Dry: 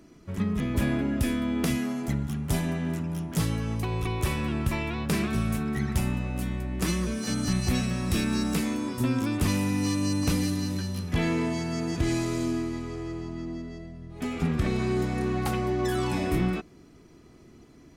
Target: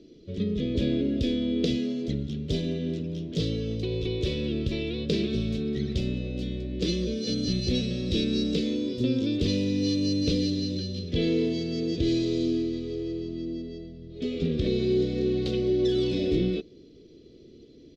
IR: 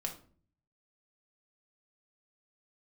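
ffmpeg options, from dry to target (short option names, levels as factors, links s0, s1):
-af "firequalizer=gain_entry='entry(160,0);entry(480,11);entry(830,-22);entry(3600,11);entry(10000,-27)':delay=0.05:min_phase=1,volume=0.75"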